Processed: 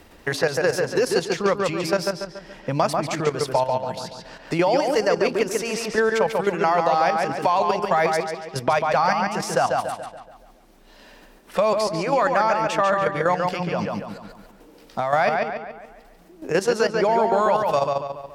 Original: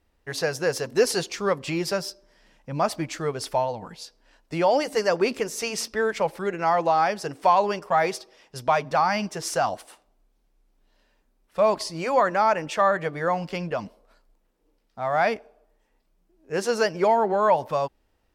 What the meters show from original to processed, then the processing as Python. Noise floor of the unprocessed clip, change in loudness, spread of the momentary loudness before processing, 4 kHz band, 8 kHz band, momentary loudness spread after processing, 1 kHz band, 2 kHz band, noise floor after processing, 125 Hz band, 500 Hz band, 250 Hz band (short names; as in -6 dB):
-69 dBFS, +2.5 dB, 12 LU, +2.0 dB, +0.5 dB, 11 LU, +2.5 dB, +4.0 dB, -50 dBFS, +4.0 dB, +3.0 dB, +4.0 dB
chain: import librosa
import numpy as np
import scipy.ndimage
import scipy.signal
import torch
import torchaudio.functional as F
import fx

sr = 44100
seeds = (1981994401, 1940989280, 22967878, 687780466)

y = fx.level_steps(x, sr, step_db=12)
y = fx.echo_filtered(y, sr, ms=141, feedback_pct=34, hz=4600.0, wet_db=-4.0)
y = fx.band_squash(y, sr, depth_pct=70)
y = y * librosa.db_to_amplitude(5.5)